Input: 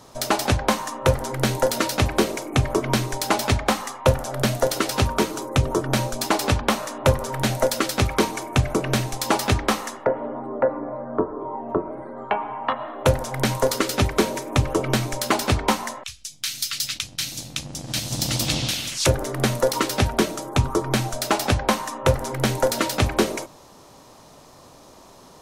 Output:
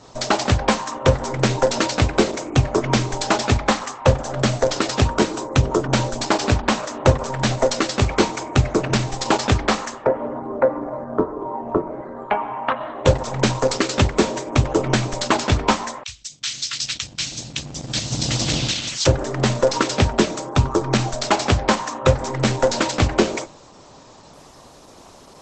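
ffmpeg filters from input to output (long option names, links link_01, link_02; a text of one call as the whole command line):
ffmpeg -i in.wav -af "volume=3.5dB" -ar 48000 -c:a libopus -b:a 12k out.opus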